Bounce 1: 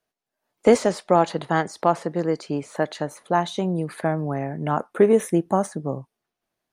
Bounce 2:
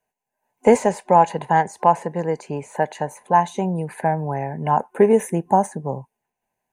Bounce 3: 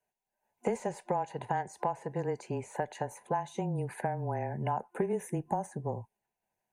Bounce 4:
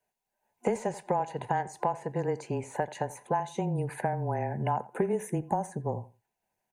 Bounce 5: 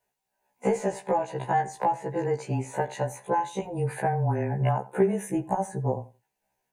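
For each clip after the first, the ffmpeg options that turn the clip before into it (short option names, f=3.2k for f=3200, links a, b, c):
-af "superequalizer=6b=0.447:9b=2.24:10b=0.316:13b=0.316:14b=0.316,volume=1.5dB"
-af "acompressor=threshold=-22dB:ratio=6,afreqshift=-19,volume=-6.5dB"
-filter_complex "[0:a]asplit=2[a][b];[b]adelay=86,lowpass=f=2.8k:p=1,volume=-18dB,asplit=2[c][d];[d]adelay=86,lowpass=f=2.8k:p=1,volume=0.2[e];[a][c][e]amix=inputs=3:normalize=0,volume=3dB"
-af "afftfilt=real='re*1.73*eq(mod(b,3),0)':imag='im*1.73*eq(mod(b,3),0)':win_size=2048:overlap=0.75,volume=6dB"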